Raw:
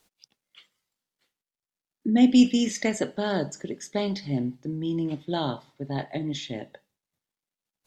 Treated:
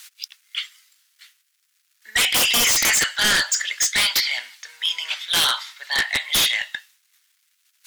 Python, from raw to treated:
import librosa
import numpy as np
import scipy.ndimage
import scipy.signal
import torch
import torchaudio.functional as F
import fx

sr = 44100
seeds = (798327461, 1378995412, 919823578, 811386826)

y = scipy.signal.sosfilt(scipy.signal.cheby2(4, 70, 330.0, 'highpass', fs=sr, output='sos'), x)
y = fx.fold_sine(y, sr, drive_db=19, ceiling_db=-17.0)
y = y * 10.0 ** (3.0 / 20.0)